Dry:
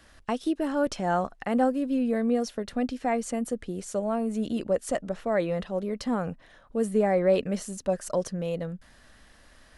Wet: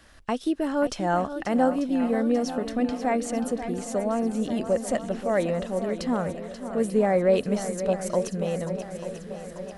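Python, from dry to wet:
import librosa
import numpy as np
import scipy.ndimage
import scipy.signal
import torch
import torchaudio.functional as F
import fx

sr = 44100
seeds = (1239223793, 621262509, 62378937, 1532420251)

y = fx.echo_swing(x, sr, ms=891, ratio=1.5, feedback_pct=56, wet_db=-11.0)
y = F.gain(torch.from_numpy(y), 1.5).numpy()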